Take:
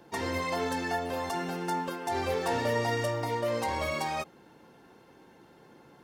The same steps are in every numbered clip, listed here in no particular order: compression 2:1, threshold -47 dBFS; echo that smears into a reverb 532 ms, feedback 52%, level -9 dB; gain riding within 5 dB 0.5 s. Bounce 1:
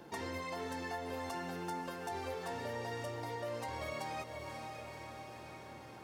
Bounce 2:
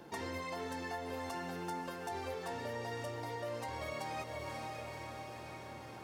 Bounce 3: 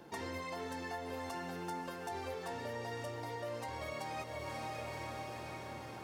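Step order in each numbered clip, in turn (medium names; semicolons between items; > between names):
gain riding > echo that smears into a reverb > compression; echo that smears into a reverb > gain riding > compression; echo that smears into a reverb > compression > gain riding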